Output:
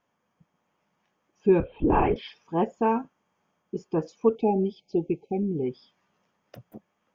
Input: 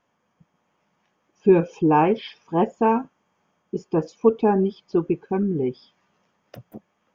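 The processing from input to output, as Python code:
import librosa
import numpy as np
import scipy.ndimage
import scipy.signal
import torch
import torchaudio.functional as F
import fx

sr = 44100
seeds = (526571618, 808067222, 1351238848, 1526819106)

y = fx.lpc_vocoder(x, sr, seeds[0], excitation='whisper', order=16, at=(1.6, 2.16))
y = fx.brickwall_bandstop(y, sr, low_hz=870.0, high_hz=2100.0, at=(4.35, 5.65))
y = y * librosa.db_to_amplitude(-4.5)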